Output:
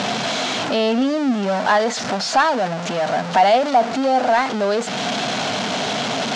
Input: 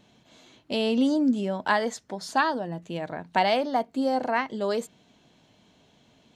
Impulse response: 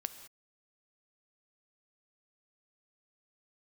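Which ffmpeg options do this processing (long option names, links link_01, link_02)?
-af "aeval=exprs='val(0)+0.5*0.0668*sgn(val(0))':channel_layout=same,acompressor=mode=upward:threshold=-23dB:ratio=2.5,highpass=frequency=140:width=0.5412,highpass=frequency=140:width=1.3066,equalizer=frequency=160:width_type=q:width=4:gain=-6,equalizer=frequency=330:width_type=q:width=4:gain=-8,equalizer=frequency=720:width_type=q:width=4:gain=7,equalizer=frequency=1400:width_type=q:width=4:gain=4,lowpass=frequency=6400:width=0.5412,lowpass=frequency=6400:width=1.3066,acontrast=56,volume=-2.5dB"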